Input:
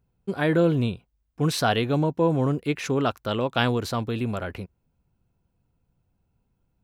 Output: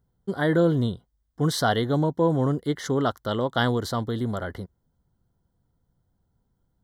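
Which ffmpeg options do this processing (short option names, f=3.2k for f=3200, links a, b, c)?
-af "asuperstop=centerf=2500:order=8:qfactor=2.8"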